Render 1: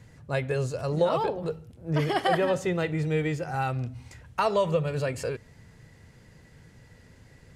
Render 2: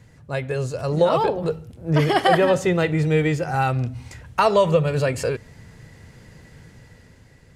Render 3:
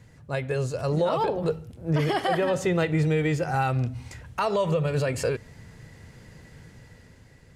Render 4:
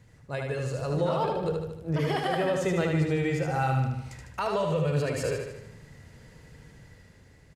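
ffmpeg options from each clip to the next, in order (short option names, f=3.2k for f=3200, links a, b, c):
-af "dynaudnorm=f=160:g=11:m=6dB,volume=1.5dB"
-af "alimiter=limit=-13.5dB:level=0:latency=1:release=95,volume=-2dB"
-af "aecho=1:1:76|152|228|304|380|456|532:0.631|0.347|0.191|0.105|0.0577|0.0318|0.0175,volume=-4.5dB"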